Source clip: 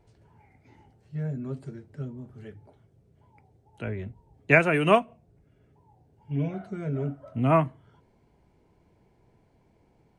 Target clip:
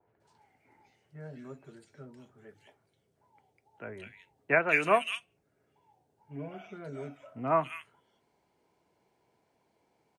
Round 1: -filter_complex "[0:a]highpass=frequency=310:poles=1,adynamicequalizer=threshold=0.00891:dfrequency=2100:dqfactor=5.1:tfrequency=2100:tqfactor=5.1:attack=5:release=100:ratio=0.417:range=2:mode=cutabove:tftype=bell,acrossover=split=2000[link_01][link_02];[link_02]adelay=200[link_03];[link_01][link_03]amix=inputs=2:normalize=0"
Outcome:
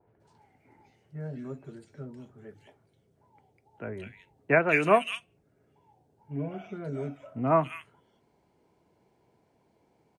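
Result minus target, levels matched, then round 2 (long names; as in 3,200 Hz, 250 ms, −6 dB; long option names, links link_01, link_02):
250 Hz band +6.0 dB
-filter_complex "[0:a]highpass=frequency=900:poles=1,adynamicequalizer=threshold=0.00891:dfrequency=2100:dqfactor=5.1:tfrequency=2100:tqfactor=5.1:attack=5:release=100:ratio=0.417:range=2:mode=cutabove:tftype=bell,acrossover=split=2000[link_01][link_02];[link_02]adelay=200[link_03];[link_01][link_03]amix=inputs=2:normalize=0"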